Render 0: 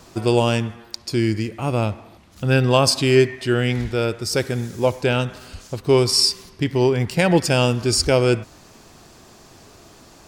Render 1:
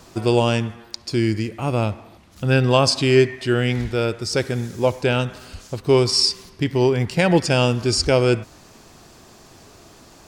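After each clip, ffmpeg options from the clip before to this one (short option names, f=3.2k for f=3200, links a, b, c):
-filter_complex "[0:a]acrossover=split=8700[a][b];[b]acompressor=threshold=-51dB:ratio=4:attack=1:release=60[c];[a][c]amix=inputs=2:normalize=0"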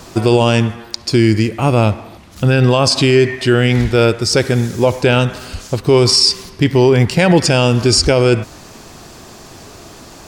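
-af "alimiter=level_in=11dB:limit=-1dB:release=50:level=0:latency=1,volume=-1dB"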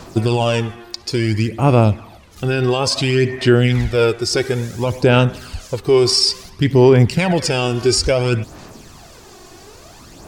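-af "aphaser=in_gain=1:out_gain=1:delay=2.8:decay=0.51:speed=0.58:type=sinusoidal,volume=-5.5dB"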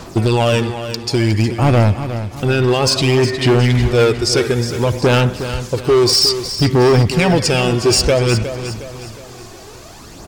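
-filter_complex "[0:a]volume=12dB,asoftclip=hard,volume=-12dB,asplit=2[a][b];[b]aecho=0:1:362|724|1086|1448:0.282|0.121|0.0521|0.0224[c];[a][c]amix=inputs=2:normalize=0,volume=3.5dB"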